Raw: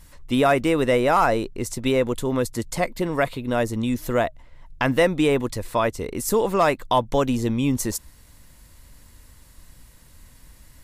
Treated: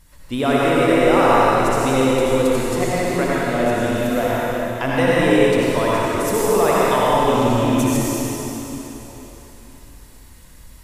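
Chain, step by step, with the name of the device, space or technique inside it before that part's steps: tunnel (flutter echo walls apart 10.5 m, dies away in 0.4 s; reverb RT60 3.8 s, pre-delay 73 ms, DRR -7.5 dB); gain -3.5 dB

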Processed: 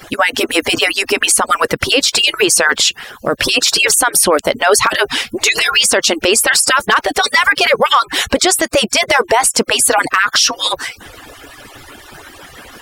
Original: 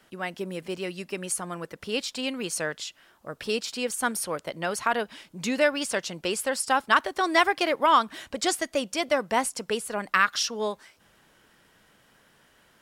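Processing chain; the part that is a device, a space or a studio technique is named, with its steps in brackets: median-filter separation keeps percussive; loud club master (compressor 2:1, threshold -32 dBFS, peak gain reduction 9.5 dB; hard clip -18.5 dBFS, distortion -27 dB; maximiser +30 dB); gain -1 dB

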